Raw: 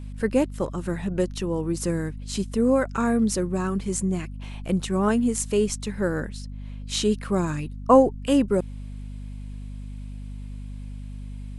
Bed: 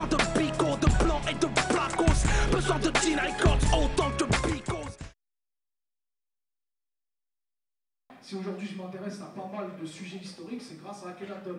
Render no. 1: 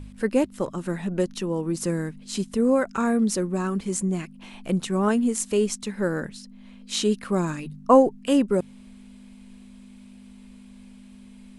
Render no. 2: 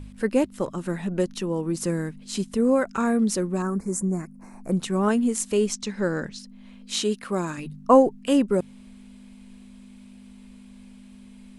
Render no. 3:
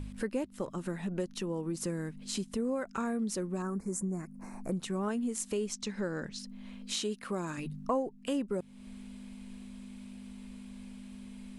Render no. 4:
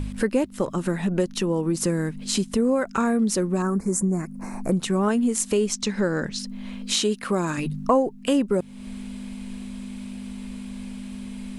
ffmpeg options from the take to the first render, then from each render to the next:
-af "bandreject=f=50:t=h:w=4,bandreject=f=100:t=h:w=4,bandreject=f=150:t=h:w=4"
-filter_complex "[0:a]asettb=1/sr,asplit=3[a][b][c];[a]atrim=end=3.624[d];[b]atrim=start=3.62:end=4.72,asetpts=PTS-STARTPTS,afade=t=in:d=0.004:c=qsin,afade=t=out:st=1.096:d=0.004:c=qsin,asuperstop=centerf=3200:order=4:qfactor=0.73[e];[c]atrim=start=4.716[f];[d][e]acrossfade=d=0.004:c1=hsin:c2=qsin[g];[g][f]acrossfade=d=0.004:c1=qsin:c2=hsin,asettb=1/sr,asplit=3[h][i][j];[h]atrim=end=5.734[k];[i]atrim=start=5.73:end=6.39,asetpts=PTS-STARTPTS,afade=t=in:d=0.004:c=qsin,afade=t=out:st=0.656:d=0.004:c=qsin,lowpass=f=6k:t=q:w=2[l];[j]atrim=start=6.386[m];[k][l]acrossfade=d=0.004:c1=hsin:c2=qsin[n];[n][m]acrossfade=d=0.004:c1=qsin:c2=hsin,asettb=1/sr,asplit=3[o][p][q];[o]atrim=end=6.994[r];[p]atrim=start=6.99:end=7.58,asetpts=PTS-STARTPTS,afade=t=in:d=0.004:c=qsin,afade=t=out:st=0.586:d=0.004:c=qsin,lowshelf=f=170:g=-10[s];[q]atrim=start=7.576[t];[r][s]acrossfade=d=0.004:c1=hsin:c2=qsin[u];[u][t]acrossfade=d=0.004:c1=qsin:c2=hsin"
-af "acompressor=threshold=-36dB:ratio=2.5"
-af "volume=11.5dB"

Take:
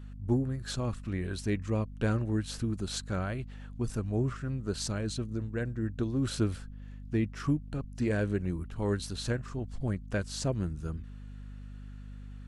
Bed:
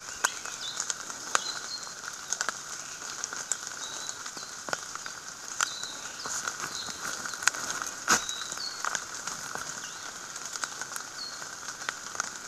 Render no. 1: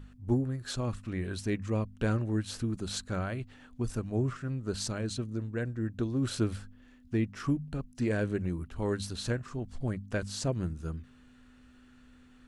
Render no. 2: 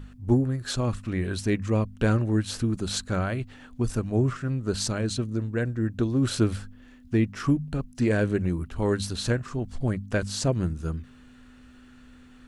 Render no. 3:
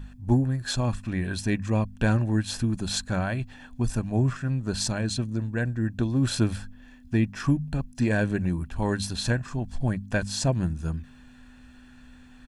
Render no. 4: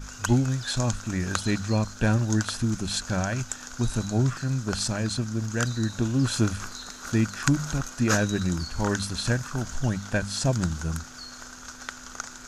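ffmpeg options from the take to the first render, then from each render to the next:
-af "bandreject=f=50:t=h:w=4,bandreject=f=100:t=h:w=4,bandreject=f=150:t=h:w=4,bandreject=f=200:t=h:w=4"
-af "volume=6.5dB"
-af "equalizer=f=94:t=o:w=0.5:g=-4.5,aecho=1:1:1.2:0.48"
-filter_complex "[1:a]volume=-3.5dB[a];[0:a][a]amix=inputs=2:normalize=0"

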